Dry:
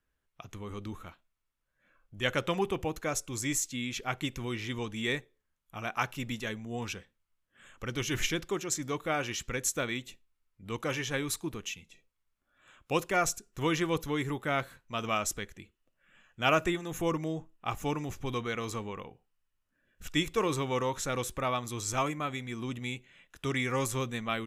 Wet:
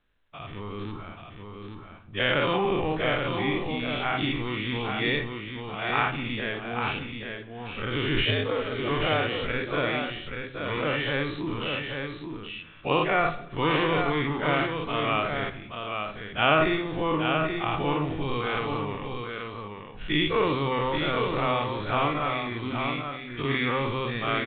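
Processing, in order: every event in the spectrogram widened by 120 ms; simulated room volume 240 m³, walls mixed, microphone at 0.34 m; 8.25–8.89 s: frequency shift +100 Hz; on a send: delay 831 ms -5.5 dB; on the sum: µ-law 64 kbps 8 kHz

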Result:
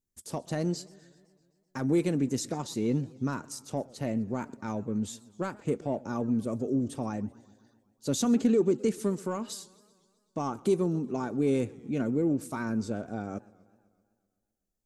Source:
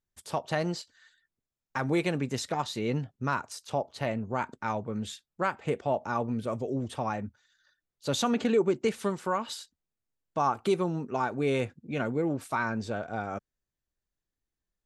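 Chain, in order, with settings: saturation -15.5 dBFS, distortion -25 dB; FFT filter 130 Hz 0 dB, 270 Hz +6 dB, 840 Hz -8 dB, 3.4 kHz -8 dB, 6.5 kHz +3 dB; modulated delay 128 ms, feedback 64%, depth 193 cents, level -22.5 dB

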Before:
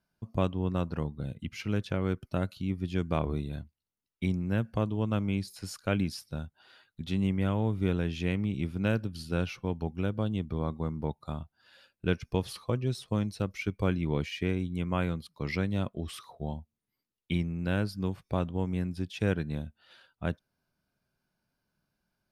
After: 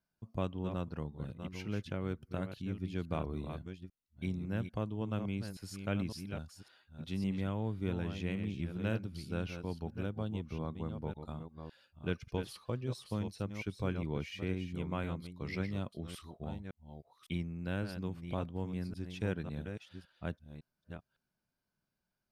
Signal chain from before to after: chunks repeated in reverse 557 ms, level -8 dB; trim -7.5 dB

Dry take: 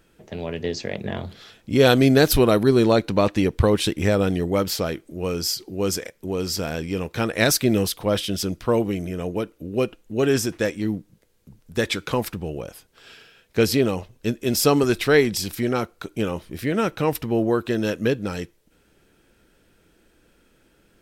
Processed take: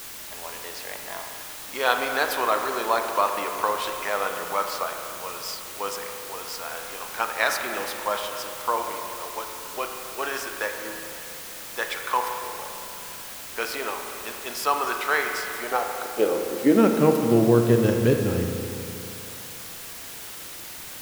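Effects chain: treble shelf 2.1 kHz -8.5 dB; in parallel at 0 dB: level held to a coarse grid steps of 23 dB; on the sum: high-pass sweep 1 kHz -> 83 Hz, 15.51–17.89 s; added noise white -35 dBFS; spring tank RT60 2.8 s, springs 34/40 ms, chirp 50 ms, DRR 3.5 dB; trim -4 dB

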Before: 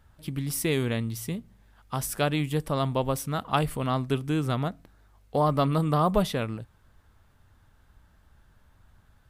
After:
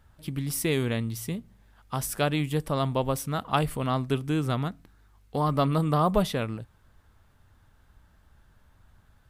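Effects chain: 4.61–5.53 s: peaking EQ 600 Hz -7.5 dB 0.71 oct

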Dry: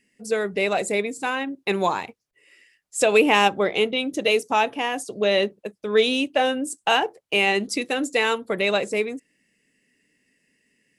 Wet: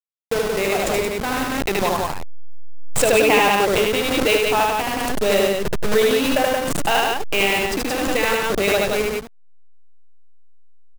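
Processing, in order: send-on-delta sampling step -21 dBFS; transient shaper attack +2 dB, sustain -8 dB; on a send: loudspeakers at several distances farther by 26 m -1 dB, 60 m -3 dB; on the sum: swell ahead of each attack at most 23 dB/s; trim -1 dB

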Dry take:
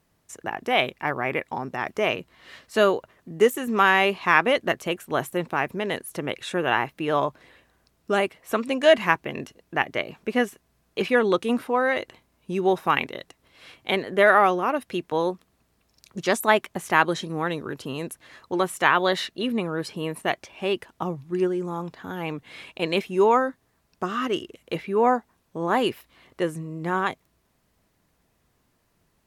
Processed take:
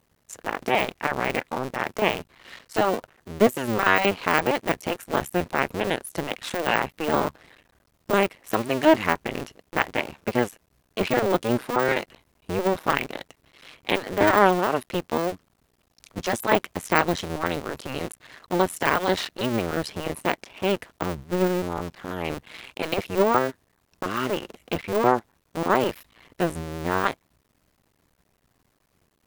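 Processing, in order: cycle switcher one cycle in 2, muted; de-esser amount 60%; trim +4 dB

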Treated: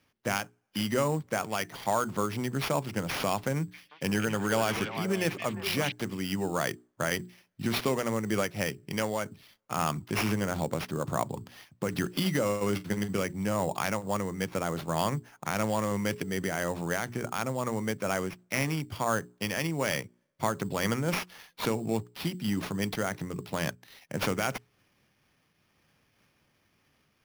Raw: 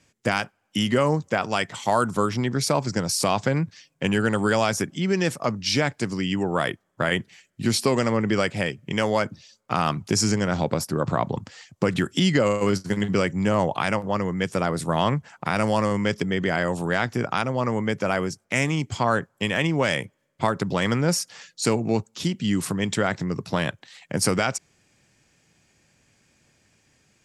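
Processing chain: hum notches 60/120/180/240/300/360/420 Hz; sample-rate reducer 7.9 kHz, jitter 0%; 3.56–5.92 s: repeats whose band climbs or falls 176 ms, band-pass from 2.7 kHz, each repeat -1.4 oct, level -2 dB; random flutter of the level, depth 55%; trim -3.5 dB

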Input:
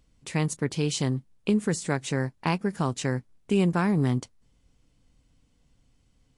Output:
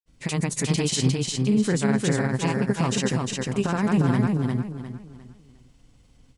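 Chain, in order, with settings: peak limiter -21.5 dBFS, peak gain reduction 10.5 dB; granulator, pitch spread up and down by 0 st; feedback delay 354 ms, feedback 31%, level -3 dB; trim +8 dB

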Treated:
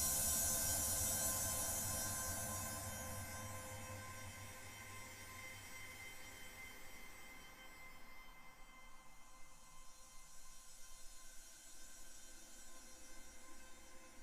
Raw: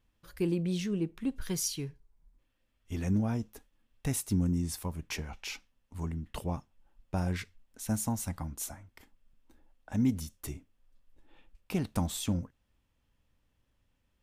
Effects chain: feedback comb 520 Hz, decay 0.38 s, mix 90%; band-passed feedback delay 737 ms, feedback 53%, band-pass 2.4 kHz, level -14.5 dB; Paulstretch 16×, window 0.50 s, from 8.64 s; trim +17.5 dB

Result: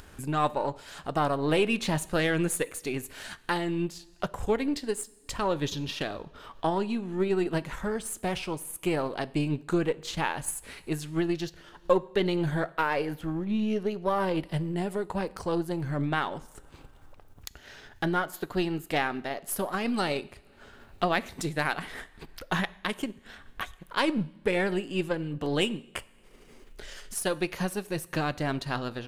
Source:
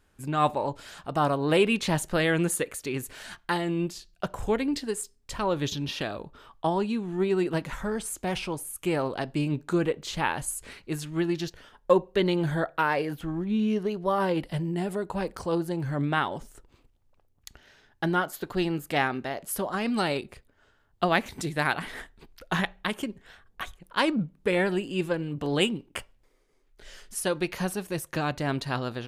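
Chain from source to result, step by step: partial rectifier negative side -3 dB; in parallel at -3 dB: peak limiter -19 dBFS, peak gain reduction 11 dB; on the sum: two-slope reverb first 0.72 s, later 2.1 s, DRR 16 dB; upward compressor, threshold -31 dBFS; transient shaper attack +2 dB, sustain -2 dB; trim -4.5 dB

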